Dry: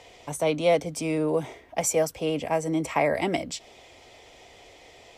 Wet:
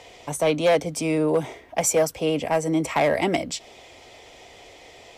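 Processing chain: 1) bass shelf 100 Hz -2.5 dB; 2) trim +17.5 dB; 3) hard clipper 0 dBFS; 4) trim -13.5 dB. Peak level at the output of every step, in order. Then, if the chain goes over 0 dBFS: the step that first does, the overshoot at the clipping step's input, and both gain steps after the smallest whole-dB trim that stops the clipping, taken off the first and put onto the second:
-10.0 dBFS, +7.5 dBFS, 0.0 dBFS, -13.5 dBFS; step 2, 7.5 dB; step 2 +9.5 dB, step 4 -5.5 dB

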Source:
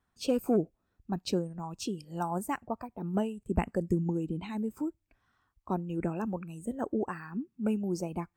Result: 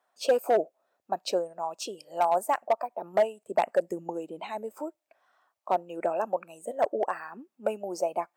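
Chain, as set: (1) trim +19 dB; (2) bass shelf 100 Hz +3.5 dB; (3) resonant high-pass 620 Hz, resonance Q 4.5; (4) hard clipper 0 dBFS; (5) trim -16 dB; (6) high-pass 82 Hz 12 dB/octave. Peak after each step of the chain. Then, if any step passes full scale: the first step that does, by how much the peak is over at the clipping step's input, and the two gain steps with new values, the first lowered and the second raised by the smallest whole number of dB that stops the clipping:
+6.5 dBFS, +8.0 dBFS, +6.0 dBFS, 0.0 dBFS, -16.0 dBFS, -14.5 dBFS; step 1, 6.0 dB; step 1 +13 dB, step 5 -10 dB

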